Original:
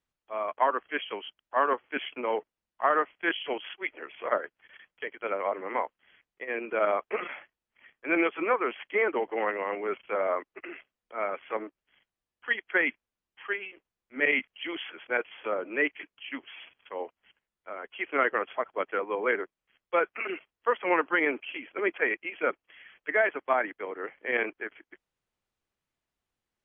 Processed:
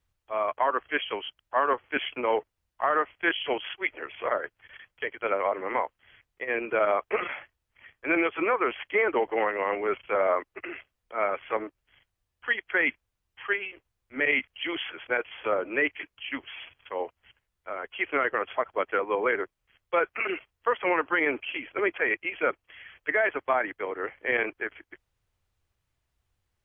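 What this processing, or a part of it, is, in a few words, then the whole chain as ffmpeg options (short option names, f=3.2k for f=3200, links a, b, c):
car stereo with a boomy subwoofer: -af "lowshelf=f=140:t=q:w=1.5:g=10.5,alimiter=limit=-18.5dB:level=0:latency=1:release=114,volume=4.5dB"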